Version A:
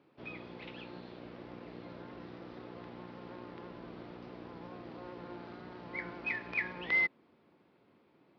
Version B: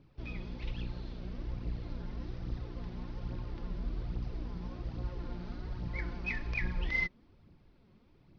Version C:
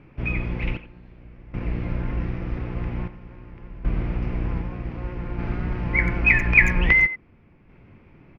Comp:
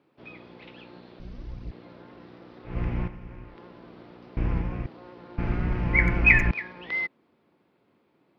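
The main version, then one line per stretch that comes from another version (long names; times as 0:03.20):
A
0:01.20–0:01.71: punch in from B
0:02.71–0:03.50: punch in from C, crossfade 0.16 s
0:04.37–0:04.86: punch in from C
0:05.38–0:06.51: punch in from C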